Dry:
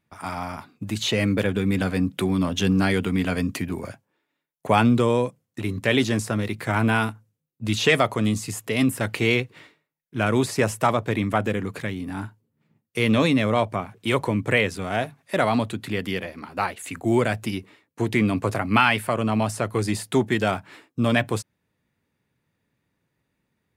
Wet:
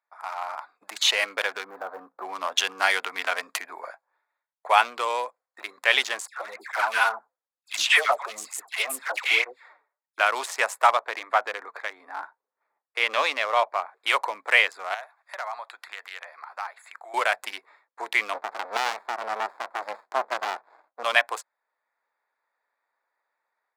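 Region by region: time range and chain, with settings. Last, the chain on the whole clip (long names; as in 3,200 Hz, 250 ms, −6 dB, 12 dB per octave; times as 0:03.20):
0:01.64–0:02.25: running median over 25 samples + flat-topped bell 4,300 Hz −15 dB 2.6 octaves
0:06.27–0:10.18: high-shelf EQ 4,100 Hz +4 dB + all-pass dispersion lows, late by 108 ms, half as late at 1,600 Hz + through-zero flanger with one copy inverted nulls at 1.1 Hz, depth 6.8 ms
0:11.01–0:13.93: low-pass filter 2,900 Hz 6 dB per octave + notch filter 200 Hz, Q 5.7
0:14.94–0:17.14: high-pass filter 740 Hz + downward compressor 2 to 1, threshold −40 dBFS
0:18.33–0:21.03: high-pass filter 210 Hz + spectral tilt −3 dB per octave + windowed peak hold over 65 samples
whole clip: adaptive Wiener filter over 15 samples; automatic gain control gain up to 7 dB; high-pass filter 740 Hz 24 dB per octave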